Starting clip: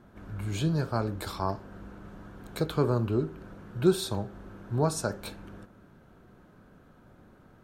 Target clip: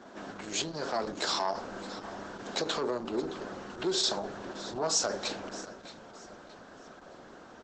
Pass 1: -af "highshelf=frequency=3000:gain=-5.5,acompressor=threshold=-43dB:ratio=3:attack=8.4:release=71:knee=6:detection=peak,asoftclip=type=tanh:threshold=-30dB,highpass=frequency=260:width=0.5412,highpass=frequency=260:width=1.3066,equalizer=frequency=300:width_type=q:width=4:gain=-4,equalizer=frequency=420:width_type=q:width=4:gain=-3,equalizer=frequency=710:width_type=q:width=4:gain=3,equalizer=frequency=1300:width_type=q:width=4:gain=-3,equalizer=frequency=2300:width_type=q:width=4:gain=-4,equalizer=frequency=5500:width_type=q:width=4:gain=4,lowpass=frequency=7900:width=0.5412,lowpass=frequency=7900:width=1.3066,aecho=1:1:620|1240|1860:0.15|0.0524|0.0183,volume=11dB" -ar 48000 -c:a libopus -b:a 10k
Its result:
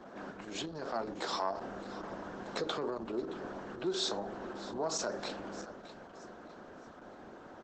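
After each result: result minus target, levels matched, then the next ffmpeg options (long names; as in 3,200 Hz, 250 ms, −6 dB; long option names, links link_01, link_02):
downward compressor: peak gain reduction +5 dB; 8,000 Hz band −4.5 dB
-af "highshelf=frequency=3000:gain=-5.5,acompressor=threshold=-35.5dB:ratio=3:attack=8.4:release=71:knee=6:detection=peak,asoftclip=type=tanh:threshold=-30dB,highpass=frequency=260:width=0.5412,highpass=frequency=260:width=1.3066,equalizer=frequency=300:width_type=q:width=4:gain=-4,equalizer=frequency=420:width_type=q:width=4:gain=-3,equalizer=frequency=710:width_type=q:width=4:gain=3,equalizer=frequency=1300:width_type=q:width=4:gain=-3,equalizer=frequency=2300:width_type=q:width=4:gain=-4,equalizer=frequency=5500:width_type=q:width=4:gain=4,lowpass=frequency=7900:width=0.5412,lowpass=frequency=7900:width=1.3066,aecho=1:1:620|1240|1860:0.15|0.0524|0.0183,volume=11dB" -ar 48000 -c:a libopus -b:a 10k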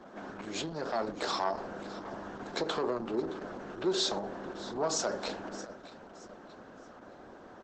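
8,000 Hz band −4.0 dB
-af "highshelf=frequency=3000:gain=5,acompressor=threshold=-35.5dB:ratio=3:attack=8.4:release=71:knee=6:detection=peak,asoftclip=type=tanh:threshold=-30dB,highpass=frequency=260:width=0.5412,highpass=frequency=260:width=1.3066,equalizer=frequency=300:width_type=q:width=4:gain=-4,equalizer=frequency=420:width_type=q:width=4:gain=-3,equalizer=frequency=710:width_type=q:width=4:gain=3,equalizer=frequency=1300:width_type=q:width=4:gain=-3,equalizer=frequency=2300:width_type=q:width=4:gain=-4,equalizer=frequency=5500:width_type=q:width=4:gain=4,lowpass=frequency=7900:width=0.5412,lowpass=frequency=7900:width=1.3066,aecho=1:1:620|1240|1860:0.15|0.0524|0.0183,volume=11dB" -ar 48000 -c:a libopus -b:a 10k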